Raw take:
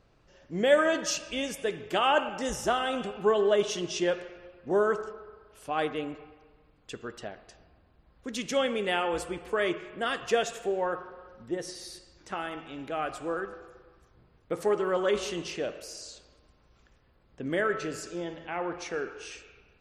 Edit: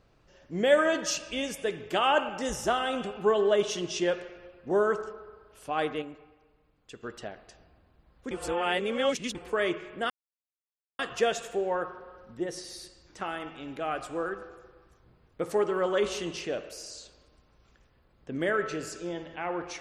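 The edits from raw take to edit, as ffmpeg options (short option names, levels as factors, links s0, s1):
-filter_complex "[0:a]asplit=6[s0][s1][s2][s3][s4][s5];[s0]atrim=end=6.022[s6];[s1]atrim=start=6.018:end=7.032,asetpts=PTS-STARTPTS,volume=0.501[s7];[s2]atrim=start=7.028:end=8.312[s8];[s3]atrim=start=8.308:end=9.352,asetpts=PTS-STARTPTS,areverse[s9];[s4]atrim=start=9.348:end=10.1,asetpts=PTS-STARTPTS,afade=t=out:st=0.748:d=0.004:c=hsin,apad=pad_dur=0.89[s10];[s5]atrim=start=10.1,asetpts=PTS-STARTPTS,afade=t=in:d=0.004:c=hsin[s11];[s6][s7]acrossfade=d=0.004:c1=hsin:c2=hsin[s12];[s12][s8]acrossfade=d=0.004:c1=hsin:c2=hsin[s13];[s13][s9]acrossfade=d=0.004:c1=hsin:c2=hsin[s14];[s10][s11]concat=n=2:v=0:a=1[s15];[s14][s15]acrossfade=d=0.004:c1=hsin:c2=hsin"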